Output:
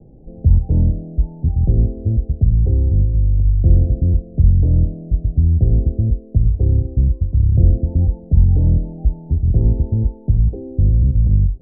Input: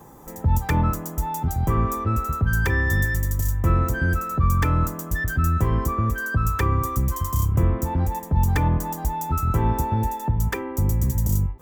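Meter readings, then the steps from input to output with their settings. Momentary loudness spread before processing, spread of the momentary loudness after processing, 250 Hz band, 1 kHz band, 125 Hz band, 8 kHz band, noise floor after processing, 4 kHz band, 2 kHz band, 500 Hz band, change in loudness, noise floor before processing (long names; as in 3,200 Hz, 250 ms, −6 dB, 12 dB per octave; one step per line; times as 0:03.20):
5 LU, 6 LU, +3.0 dB, below −20 dB, +7.0 dB, below −40 dB, −39 dBFS, below −40 dB, below −40 dB, −1.0 dB, +6.0 dB, −36 dBFS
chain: Butterworth low-pass 720 Hz 72 dB per octave
spectral tilt −3.5 dB per octave
level −5 dB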